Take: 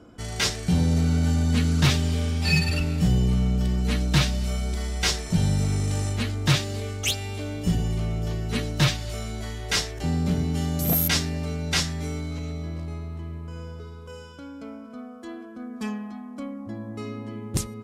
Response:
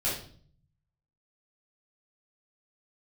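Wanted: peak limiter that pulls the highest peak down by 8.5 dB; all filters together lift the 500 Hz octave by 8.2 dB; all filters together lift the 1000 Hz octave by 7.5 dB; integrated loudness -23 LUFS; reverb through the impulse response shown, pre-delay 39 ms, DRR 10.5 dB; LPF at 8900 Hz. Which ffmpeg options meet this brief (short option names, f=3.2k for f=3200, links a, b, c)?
-filter_complex "[0:a]lowpass=8.9k,equalizer=f=500:t=o:g=8.5,equalizer=f=1k:t=o:g=7,alimiter=limit=-14.5dB:level=0:latency=1,asplit=2[a][b];[1:a]atrim=start_sample=2205,adelay=39[c];[b][c]afir=irnorm=-1:irlink=0,volume=-18.5dB[d];[a][d]amix=inputs=2:normalize=0,volume=2dB"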